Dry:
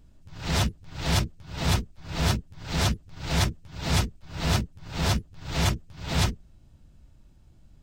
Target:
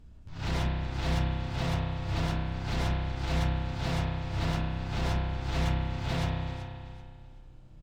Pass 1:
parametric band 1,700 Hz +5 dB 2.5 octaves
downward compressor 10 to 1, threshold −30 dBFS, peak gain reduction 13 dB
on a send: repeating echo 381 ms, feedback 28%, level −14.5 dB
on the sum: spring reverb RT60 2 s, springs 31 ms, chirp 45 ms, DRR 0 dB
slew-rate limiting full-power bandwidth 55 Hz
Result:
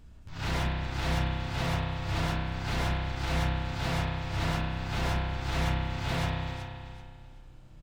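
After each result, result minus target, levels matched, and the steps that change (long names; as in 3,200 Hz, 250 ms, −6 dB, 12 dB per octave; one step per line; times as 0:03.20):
2,000 Hz band +3.5 dB; 8,000 Hz band +2.5 dB
remove: parametric band 1,700 Hz +5 dB 2.5 octaves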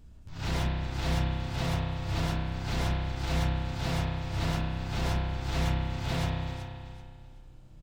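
8,000 Hz band +3.0 dB
add after downward compressor: high-shelf EQ 7,400 Hz −10.5 dB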